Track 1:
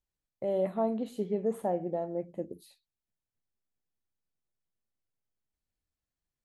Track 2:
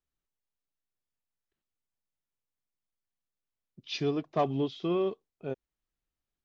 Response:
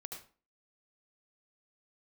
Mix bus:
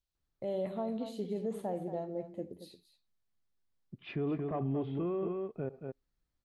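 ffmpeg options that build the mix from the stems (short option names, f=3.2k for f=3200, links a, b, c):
-filter_complex "[0:a]equalizer=f=4.1k:t=o:w=1.2:g=9.5,volume=-7.5dB,asplit=3[a][b][c];[b]volume=-8dB[d];[c]volume=-10.5dB[e];[1:a]lowpass=f=2.1k:w=0.5412,lowpass=f=2.1k:w=1.3066,alimiter=limit=-22.5dB:level=0:latency=1,adelay=150,volume=1dB,asplit=3[f][g][h];[g]volume=-16dB[i];[h]volume=-9.5dB[j];[2:a]atrim=start_sample=2205[k];[d][i]amix=inputs=2:normalize=0[l];[l][k]afir=irnorm=-1:irlink=0[m];[e][j]amix=inputs=2:normalize=0,aecho=0:1:227:1[n];[a][f][m][n]amix=inputs=4:normalize=0,lowshelf=f=210:g=6,alimiter=level_in=3dB:limit=-24dB:level=0:latency=1:release=27,volume=-3dB"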